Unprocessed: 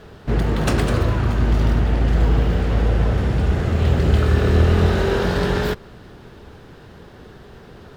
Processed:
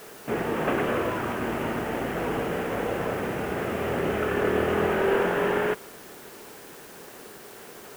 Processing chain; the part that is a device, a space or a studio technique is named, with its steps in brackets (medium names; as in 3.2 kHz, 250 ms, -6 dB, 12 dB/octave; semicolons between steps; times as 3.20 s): army field radio (band-pass 310–3200 Hz; CVSD coder 16 kbps; white noise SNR 21 dB)